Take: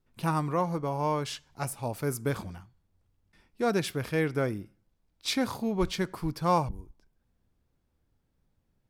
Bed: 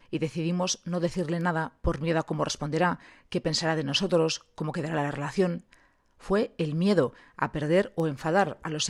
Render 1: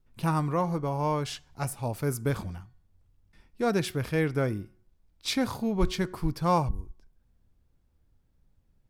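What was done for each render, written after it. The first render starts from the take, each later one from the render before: bass shelf 96 Hz +10 dB; de-hum 367.4 Hz, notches 5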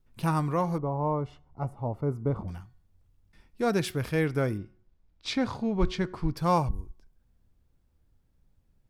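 0.78–2.48 s: Savitzky-Golay filter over 65 samples; 4.57–6.37 s: distance through air 99 m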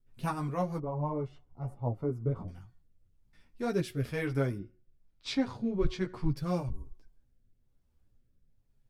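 rotary cabinet horn 6.3 Hz, later 1.1 Hz, at 2.00 s; chorus voices 6, 0.71 Hz, delay 12 ms, depth 4.9 ms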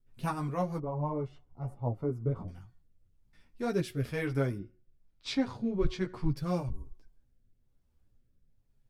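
no audible change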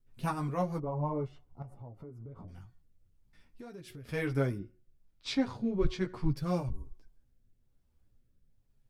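1.62–4.09 s: compression 12:1, threshold -43 dBFS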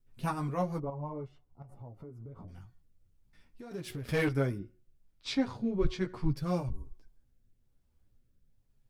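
0.90–1.69 s: gain -6 dB; 3.71–4.29 s: waveshaping leveller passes 2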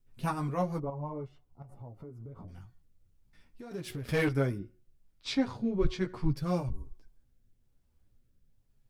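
trim +1 dB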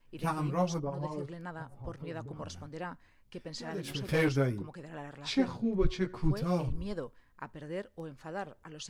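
add bed -15.5 dB

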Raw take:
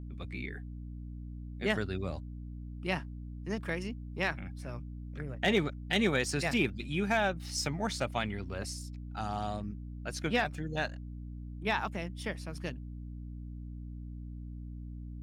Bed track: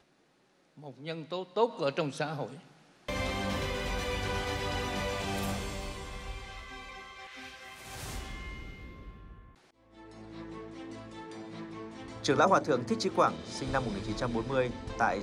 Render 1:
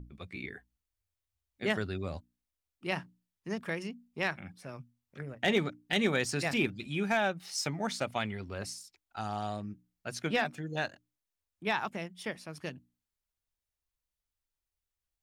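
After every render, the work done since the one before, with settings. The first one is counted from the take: hum notches 60/120/180/240/300 Hz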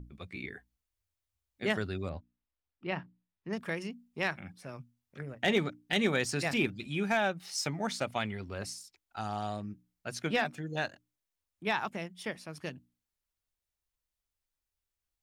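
2.09–3.53 s: distance through air 260 m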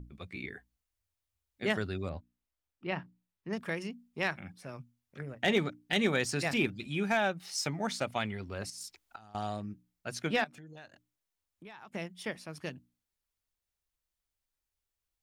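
8.70–9.35 s: compressor with a negative ratio -50 dBFS; 10.44–11.94 s: compression 4:1, threshold -49 dBFS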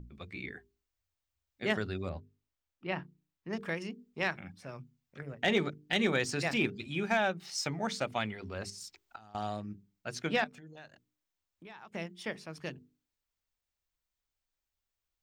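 peaking EQ 11 kHz -13 dB 0.39 oct; hum notches 50/100/150/200/250/300/350/400/450 Hz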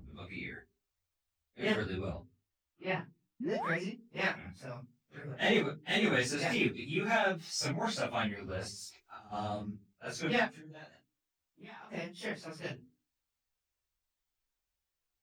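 phase randomisation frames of 100 ms; 3.40–3.77 s: painted sound rise 210–2200 Hz -37 dBFS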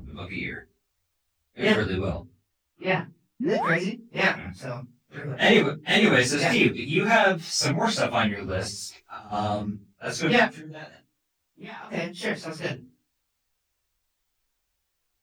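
trim +10.5 dB

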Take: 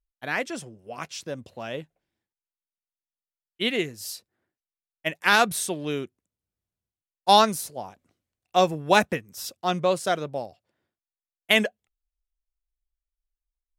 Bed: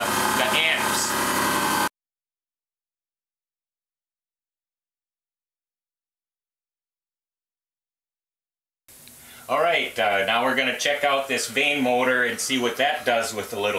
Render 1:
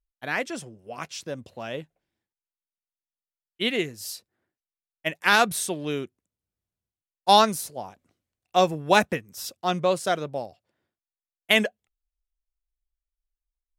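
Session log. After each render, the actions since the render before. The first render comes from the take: no audible change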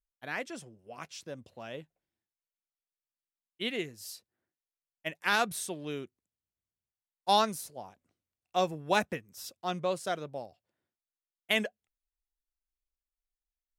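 trim -8.5 dB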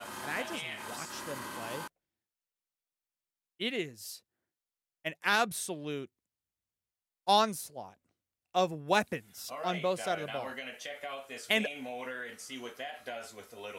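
add bed -19.5 dB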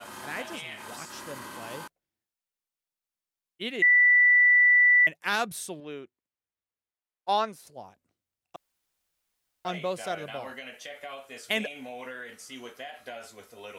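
3.82–5.07 s: bleep 1.97 kHz -15.5 dBFS; 5.80–7.67 s: tone controls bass -9 dB, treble -12 dB; 8.56–9.65 s: room tone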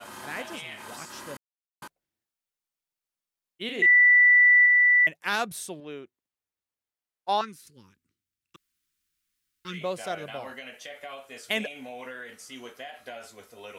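1.37–1.82 s: mute; 3.65–4.66 s: doubling 39 ms -5 dB; 7.41–9.81 s: Butterworth band-stop 690 Hz, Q 0.71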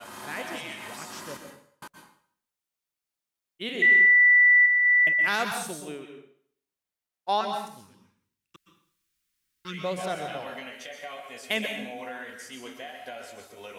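plate-style reverb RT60 0.58 s, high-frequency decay 0.95×, pre-delay 110 ms, DRR 4.5 dB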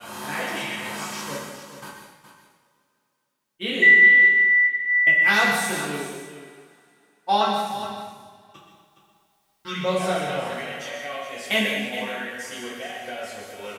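delay 417 ms -11 dB; two-slope reverb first 0.51 s, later 3 s, from -22 dB, DRR -6 dB

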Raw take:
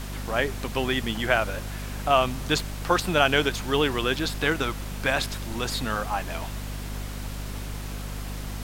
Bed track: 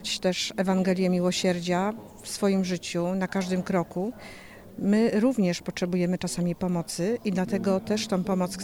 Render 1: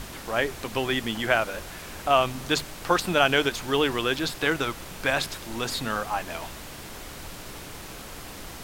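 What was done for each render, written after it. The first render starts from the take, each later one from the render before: hum notches 50/100/150/200/250 Hz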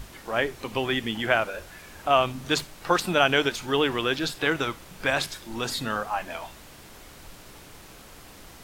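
noise print and reduce 7 dB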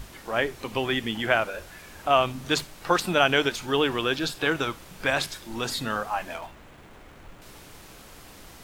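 3.67–4.78 s: band-stop 2 kHz, Q 13; 6.34–7.42 s: median filter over 9 samples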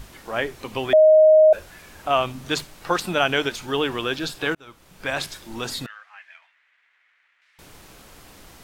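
0.93–1.53 s: bleep 624 Hz -9 dBFS; 4.55–5.25 s: fade in linear; 5.86–7.59 s: ladder band-pass 2.2 kHz, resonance 55%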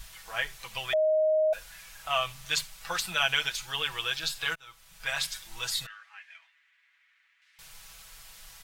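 amplifier tone stack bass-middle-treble 10-0-10; comb 6.1 ms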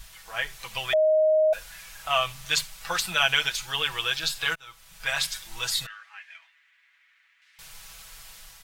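level rider gain up to 4 dB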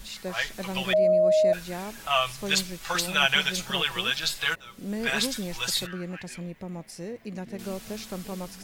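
add bed track -10 dB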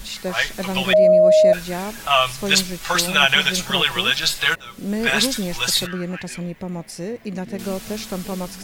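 trim +8 dB; peak limiter -3 dBFS, peak gain reduction 2.5 dB

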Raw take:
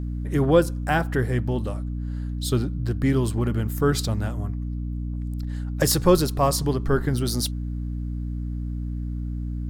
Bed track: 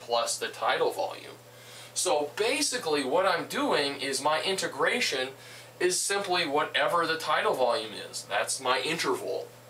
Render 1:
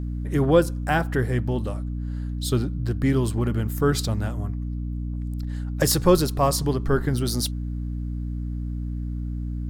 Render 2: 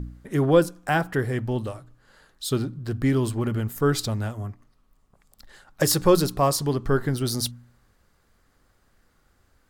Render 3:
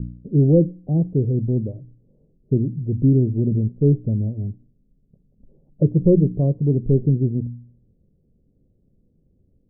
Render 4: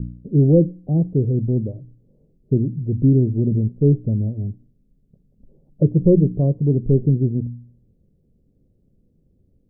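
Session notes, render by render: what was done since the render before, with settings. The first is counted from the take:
no audible change
de-hum 60 Hz, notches 5
steep low-pass 520 Hz 36 dB/octave; peaking EQ 160 Hz +10 dB 1.4 oct
trim +1 dB

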